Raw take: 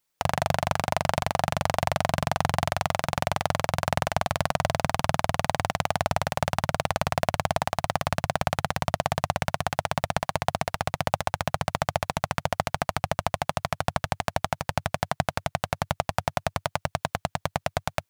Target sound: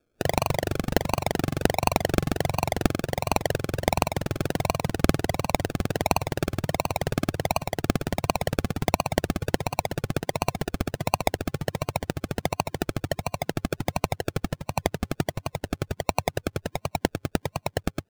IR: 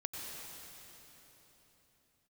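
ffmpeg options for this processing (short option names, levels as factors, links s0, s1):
-filter_complex "[0:a]superequalizer=10b=0.355:14b=1.78:15b=3.55,acrossover=split=120[s0][s1];[s1]acrusher=samples=36:mix=1:aa=0.000001:lfo=1:lforange=21.6:lforate=1.4[s2];[s0][s2]amix=inputs=2:normalize=0"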